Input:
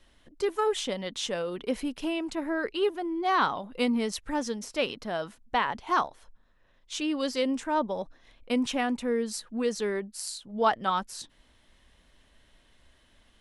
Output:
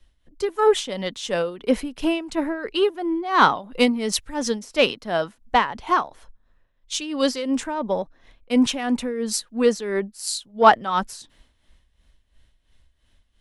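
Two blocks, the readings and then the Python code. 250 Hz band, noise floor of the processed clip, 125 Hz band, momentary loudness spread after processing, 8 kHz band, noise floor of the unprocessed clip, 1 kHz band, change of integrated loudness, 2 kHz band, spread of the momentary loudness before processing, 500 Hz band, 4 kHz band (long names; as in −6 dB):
+6.5 dB, −66 dBFS, +6.5 dB, 10 LU, +8.0 dB, −63 dBFS, +7.5 dB, +7.0 dB, +7.0 dB, 8 LU, +7.5 dB, +7.5 dB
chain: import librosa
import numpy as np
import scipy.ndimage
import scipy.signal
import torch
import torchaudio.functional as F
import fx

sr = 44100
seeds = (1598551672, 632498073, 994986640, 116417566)

p1 = 10.0 ** (-20.5 / 20.0) * np.tanh(x / 10.0 ** (-20.5 / 20.0))
p2 = x + (p1 * 10.0 ** (-4.0 / 20.0))
p3 = p2 * (1.0 - 0.68 / 2.0 + 0.68 / 2.0 * np.cos(2.0 * np.pi * 2.9 * (np.arange(len(p2)) / sr)))
p4 = fx.band_widen(p3, sr, depth_pct=40)
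y = p4 * 10.0 ** (5.5 / 20.0)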